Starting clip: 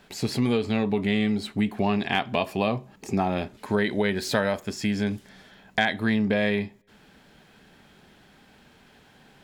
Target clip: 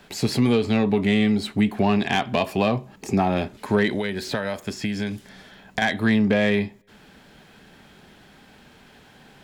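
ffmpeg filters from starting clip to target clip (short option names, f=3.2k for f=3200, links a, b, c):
-filter_complex "[0:a]asettb=1/sr,asplit=3[a][b][c];[a]atrim=end=3.954[d];[b]atrim=start=3.95:end=5.82,asetpts=PTS-STARTPTS,afade=t=in:d=0.004:c=qsin,afade=t=out:st=1.866:d=0.004:c=qsin,acrossover=split=1600|3800[e][f][g];[e]acompressor=threshold=-29dB:ratio=4[h];[f]acompressor=threshold=-38dB:ratio=4[i];[g]acompressor=threshold=-44dB:ratio=4[j];[h][i][j]amix=inputs=3:normalize=0[k];[c]atrim=start=5.816[l];[d][k]acrossfade=d=0.004:c1=hsin:c2=qsin[m];[m][l]acrossfade=d=0.004:c1=qsin:c2=hsin,acrossover=split=300[n][o];[o]asoftclip=type=tanh:threshold=-17dB[p];[n][p]amix=inputs=2:normalize=0,volume=4.5dB"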